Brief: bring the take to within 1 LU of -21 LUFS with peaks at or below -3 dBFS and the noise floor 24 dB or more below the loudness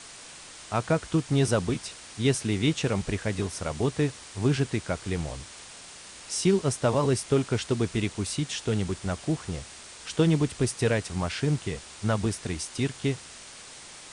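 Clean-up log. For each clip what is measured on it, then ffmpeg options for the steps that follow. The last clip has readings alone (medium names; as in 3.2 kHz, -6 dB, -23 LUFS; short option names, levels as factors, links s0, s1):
noise floor -46 dBFS; noise floor target -52 dBFS; loudness -28.0 LUFS; peak level -11.5 dBFS; loudness target -21.0 LUFS
-> -af "afftdn=nr=6:nf=-46"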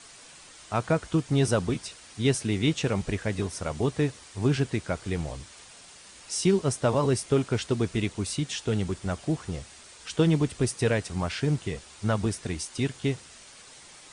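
noise floor -50 dBFS; noise floor target -52 dBFS
-> -af "afftdn=nr=6:nf=-50"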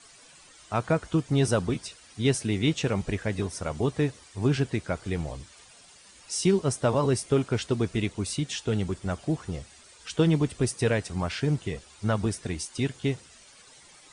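noise floor -53 dBFS; loudness -28.0 LUFS; peak level -11.5 dBFS; loudness target -21.0 LUFS
-> -af "volume=2.24"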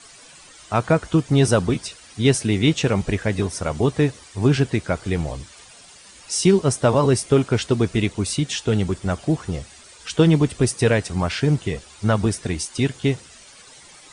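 loudness -21.0 LUFS; peak level -4.5 dBFS; noise floor -46 dBFS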